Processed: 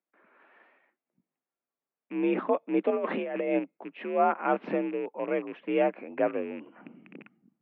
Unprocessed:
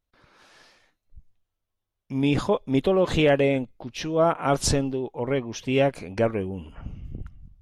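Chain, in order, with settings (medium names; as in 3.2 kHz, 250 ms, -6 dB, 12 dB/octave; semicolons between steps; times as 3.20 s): rattle on loud lows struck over -32 dBFS, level -29 dBFS; 2.90–3.59 s: compressor with a negative ratio -23 dBFS, ratio -0.5; mistuned SSB +54 Hz 170–2400 Hz; trim -3.5 dB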